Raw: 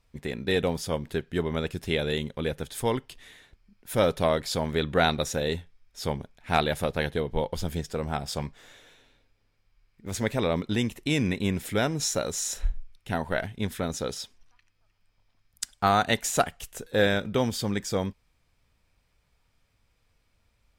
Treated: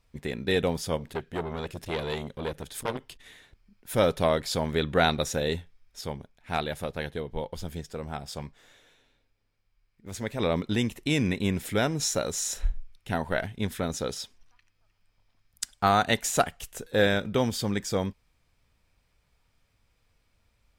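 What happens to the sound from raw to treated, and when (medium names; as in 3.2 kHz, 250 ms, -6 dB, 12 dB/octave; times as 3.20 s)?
0.97–3.93 s: transformer saturation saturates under 1.5 kHz
6.01–10.40 s: gain -5.5 dB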